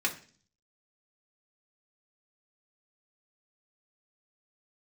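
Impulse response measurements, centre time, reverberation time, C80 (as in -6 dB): 10 ms, 0.45 s, 17.5 dB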